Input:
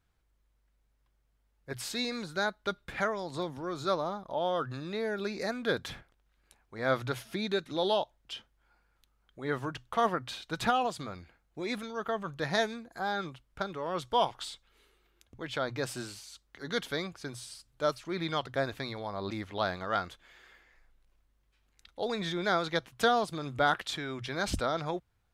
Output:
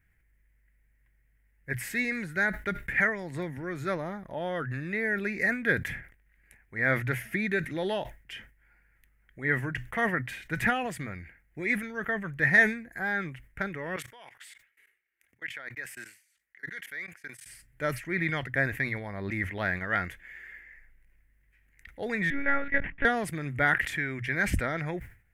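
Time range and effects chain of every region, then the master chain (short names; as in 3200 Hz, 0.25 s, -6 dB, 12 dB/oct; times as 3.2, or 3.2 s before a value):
13.96–17.46 HPF 1200 Hz 6 dB/oct + level quantiser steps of 23 dB
22.3–23.05 LPF 2300 Hz + monotone LPC vocoder at 8 kHz 280 Hz
whole clip: EQ curve 140 Hz 0 dB, 1200 Hz -13 dB, 1900 Hz +12 dB, 3900 Hz -19 dB, 12000 Hz 0 dB; sustainer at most 130 dB/s; gain +6 dB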